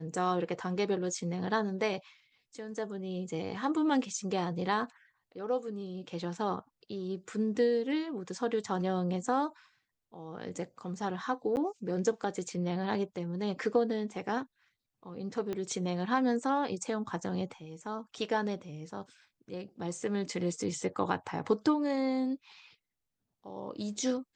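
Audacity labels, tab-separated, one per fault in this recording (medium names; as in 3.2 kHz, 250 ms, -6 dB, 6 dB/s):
11.560000	11.570000	dropout 9.5 ms
15.530000	15.530000	pop -23 dBFS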